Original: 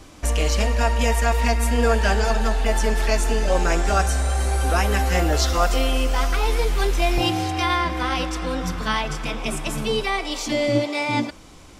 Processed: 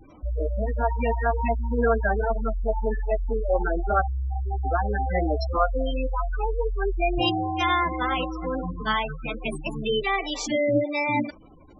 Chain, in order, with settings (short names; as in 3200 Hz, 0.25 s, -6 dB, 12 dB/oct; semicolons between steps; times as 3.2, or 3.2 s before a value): spectral gate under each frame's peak -15 dB strong; low shelf 190 Hz -6.5 dB